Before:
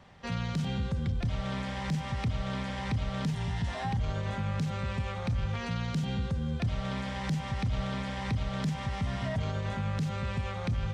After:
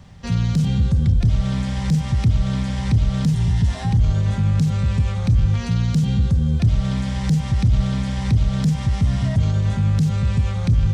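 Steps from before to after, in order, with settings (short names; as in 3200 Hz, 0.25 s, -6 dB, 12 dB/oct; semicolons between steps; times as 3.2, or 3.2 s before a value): tone controls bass +14 dB, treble +11 dB; in parallel at -10.5 dB: hard clip -19 dBFS, distortion -10 dB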